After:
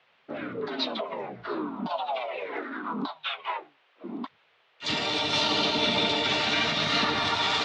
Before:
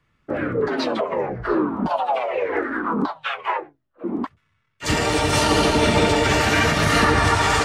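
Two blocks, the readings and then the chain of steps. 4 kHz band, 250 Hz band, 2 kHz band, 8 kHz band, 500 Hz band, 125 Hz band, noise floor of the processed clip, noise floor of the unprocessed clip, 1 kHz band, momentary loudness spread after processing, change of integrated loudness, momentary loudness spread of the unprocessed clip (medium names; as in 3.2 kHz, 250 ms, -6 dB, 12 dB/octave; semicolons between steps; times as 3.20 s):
0.0 dB, -10.5 dB, -8.0 dB, -13.5 dB, -11.0 dB, -16.0 dB, -65 dBFS, -69 dBFS, -9.0 dB, 15 LU, -6.5 dB, 11 LU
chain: cabinet simulation 240–5200 Hz, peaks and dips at 340 Hz -8 dB, 500 Hz -10 dB, 830 Hz -4 dB, 1.2 kHz -4 dB, 1.7 kHz -8 dB, 3.7 kHz +10 dB; band noise 400–3200 Hz -61 dBFS; trim -4.5 dB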